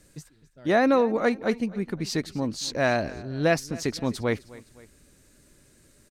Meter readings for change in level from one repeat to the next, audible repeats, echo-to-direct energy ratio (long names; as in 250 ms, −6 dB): −6.0 dB, 2, −19.0 dB